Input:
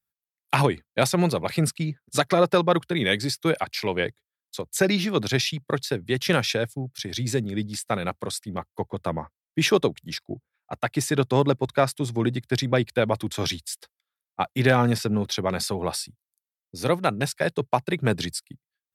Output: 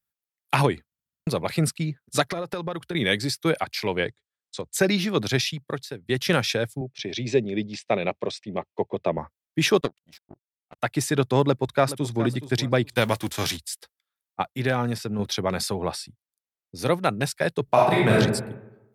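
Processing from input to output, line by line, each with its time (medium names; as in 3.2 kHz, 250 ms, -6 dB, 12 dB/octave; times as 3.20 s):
0.85 s: stutter in place 0.07 s, 6 plays
2.27–2.95 s: compression 12:1, threshold -25 dBFS
4.04–4.74 s: elliptic low-pass 8.8 kHz
5.38–6.09 s: fade out linear, to -15.5 dB
6.81–9.18 s: cabinet simulation 140–5600 Hz, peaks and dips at 390 Hz +7 dB, 610 Hz +7 dB, 1.4 kHz -10 dB, 2.5 kHz +8 dB, 4.5 kHz -4 dB
9.81–10.79 s: power-law waveshaper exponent 2
11.43–12.24 s: echo throw 420 ms, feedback 20%, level -13.5 dB
12.95–13.56 s: formants flattened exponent 0.6
14.42–15.19 s: gain -5 dB
15.78–16.79 s: treble shelf 7 kHz -10.5 dB
17.64–18.13 s: reverb throw, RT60 0.93 s, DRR -5.5 dB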